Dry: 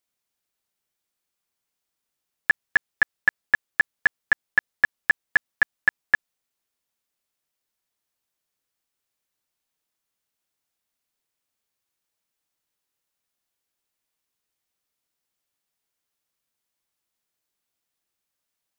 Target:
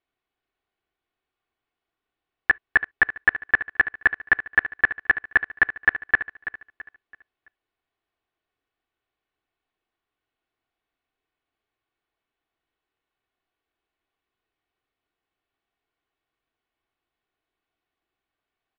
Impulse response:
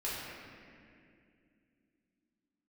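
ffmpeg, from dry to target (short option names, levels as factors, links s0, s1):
-filter_complex "[0:a]lowpass=f=3600:w=0.5412,lowpass=f=3600:w=1.3066,highshelf=f=2800:g=-8.5,aecho=1:1:2.7:0.49,aecho=1:1:332|664|996|1328:0.224|0.0828|0.0306|0.0113,asplit=2[s0][s1];[1:a]atrim=start_sample=2205,atrim=end_sample=3087[s2];[s1][s2]afir=irnorm=-1:irlink=0,volume=0.0376[s3];[s0][s3]amix=inputs=2:normalize=0,volume=1.68"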